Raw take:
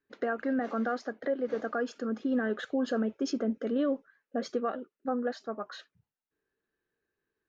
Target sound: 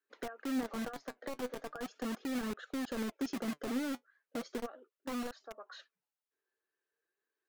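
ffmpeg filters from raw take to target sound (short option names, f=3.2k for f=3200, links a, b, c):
-filter_complex "[0:a]acrossover=split=330[a][b];[a]acrusher=bits=5:mix=0:aa=0.000001[c];[b]acompressor=threshold=-41dB:ratio=5[d];[c][d]amix=inputs=2:normalize=0,flanger=delay=0.7:depth=7.5:regen=58:speed=0.38:shape=sinusoidal"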